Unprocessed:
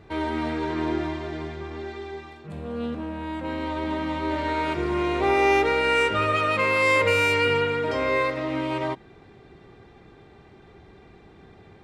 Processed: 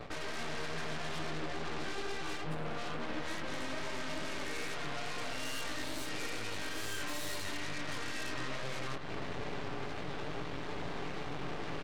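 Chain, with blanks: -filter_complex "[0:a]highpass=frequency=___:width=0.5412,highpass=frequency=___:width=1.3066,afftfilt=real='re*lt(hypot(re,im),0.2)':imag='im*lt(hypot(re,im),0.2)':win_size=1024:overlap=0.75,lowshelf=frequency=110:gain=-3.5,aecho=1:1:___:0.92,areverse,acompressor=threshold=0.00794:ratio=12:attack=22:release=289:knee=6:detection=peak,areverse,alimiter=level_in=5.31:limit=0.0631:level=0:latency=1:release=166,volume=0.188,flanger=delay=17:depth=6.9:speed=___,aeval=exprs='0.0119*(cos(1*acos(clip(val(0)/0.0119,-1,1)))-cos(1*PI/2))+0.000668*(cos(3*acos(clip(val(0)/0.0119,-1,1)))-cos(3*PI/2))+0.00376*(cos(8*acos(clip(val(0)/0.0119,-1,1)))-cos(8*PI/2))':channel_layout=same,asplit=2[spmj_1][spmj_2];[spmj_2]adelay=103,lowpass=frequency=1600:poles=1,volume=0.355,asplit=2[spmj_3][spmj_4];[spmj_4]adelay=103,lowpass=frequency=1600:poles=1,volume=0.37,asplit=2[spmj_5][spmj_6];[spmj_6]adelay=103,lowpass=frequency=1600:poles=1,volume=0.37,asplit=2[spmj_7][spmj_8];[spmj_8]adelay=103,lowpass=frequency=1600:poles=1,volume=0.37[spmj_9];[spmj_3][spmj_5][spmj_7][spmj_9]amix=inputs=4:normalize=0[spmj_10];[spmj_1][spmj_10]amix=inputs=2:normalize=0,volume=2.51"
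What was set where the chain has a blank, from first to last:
80, 80, 6.9, 2.3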